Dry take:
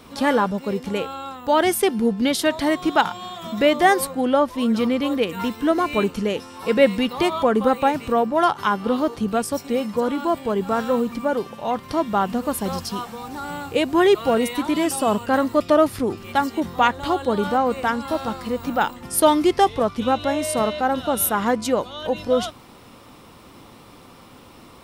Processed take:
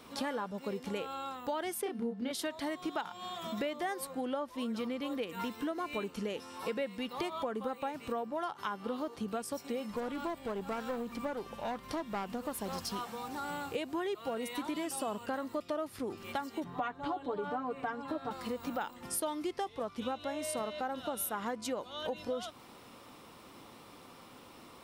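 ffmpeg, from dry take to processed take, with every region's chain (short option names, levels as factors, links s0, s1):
-filter_complex "[0:a]asettb=1/sr,asplit=3[s0][s1][s2];[s0]atrim=end=1.814[s3];[s1]atrim=start=1.81:end=2.31,asetpts=PTS-STARTPTS,afade=t=in:d=0.004:c=qsin,afade=t=out:st=0.496:d=0.004:c=qsin,highpass=52,highshelf=f=3000:g=-10.5,asplit=2[s4][s5];[s5]adelay=30,volume=0.708[s6];[s4][s6]amix=inputs=2:normalize=0,atrim=end_sample=22050[s7];[s2]atrim=start=2.306[s8];[s3][s7]acrossfade=d=0.004:c1=hsin:c2=qsin[s9];[s9][s8]acrossfade=d=0.004:c1=qsin:c2=hsin,asettb=1/sr,asplit=3[s10][s11][s12];[s10]atrim=end=9.904[s13];[s11]atrim=start=9.9:end=13.01,asetpts=PTS-STARTPTS,afade=t=in:d=0.004:c=qsin,afade=t=out:st=3.106:d=0.004:c=qsin,aeval=exprs='clip(val(0),-1,0.0562)':c=same,aeval=exprs='val(0)+0.00794*(sin(2*PI*50*n/s)+sin(2*PI*2*50*n/s)/2+sin(2*PI*3*50*n/s)/3+sin(2*PI*4*50*n/s)/4+sin(2*PI*5*50*n/s)/5)':c=same[s14];[s12]atrim=start=13.006[s15];[s13][s14]acrossfade=d=0.004:c1=hsin:c2=qsin[s16];[s16][s15]acrossfade=d=0.004:c1=qsin:c2=hsin,asettb=1/sr,asplit=3[s17][s18][s19];[s17]atrim=end=16.644[s20];[s18]atrim=start=16.64:end=18.31,asetpts=PTS-STARTPTS,afade=t=in:d=0.004:c=qsin,afade=t=out:st=1.666:d=0.004:c=qsin,lowpass=f=1300:p=1,bandreject=f=530:w=17,aecho=1:1:6.9:0.99,atrim=end_sample=73647[s21];[s19]atrim=start=18.306[s22];[s20][s21]acrossfade=d=0.004:c1=hsin:c2=qsin[s23];[s23][s22]acrossfade=d=0.004:c1=qsin:c2=hsin,lowshelf=f=140:g=-10,acompressor=threshold=0.0447:ratio=6,volume=0.473"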